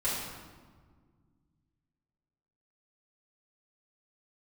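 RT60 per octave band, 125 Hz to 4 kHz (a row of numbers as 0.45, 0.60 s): 3.0, 2.7, 1.8, 1.5, 1.2, 0.95 s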